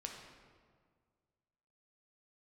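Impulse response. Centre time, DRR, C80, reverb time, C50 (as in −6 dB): 55 ms, 0.5 dB, 5.0 dB, 1.8 s, 3.0 dB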